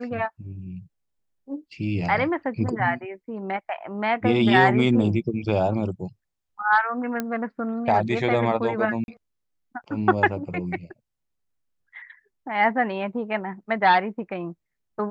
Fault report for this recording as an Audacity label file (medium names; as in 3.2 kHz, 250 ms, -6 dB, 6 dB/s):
7.200000	7.200000	pop -12 dBFS
9.040000	9.080000	dropout 41 ms